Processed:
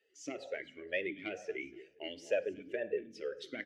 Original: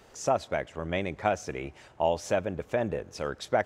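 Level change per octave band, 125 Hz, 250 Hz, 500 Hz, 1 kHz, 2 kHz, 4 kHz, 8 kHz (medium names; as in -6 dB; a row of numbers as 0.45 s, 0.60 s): -24.0 dB, -9.0 dB, -8.5 dB, -24.0 dB, -5.0 dB, -6.0 dB, -13.5 dB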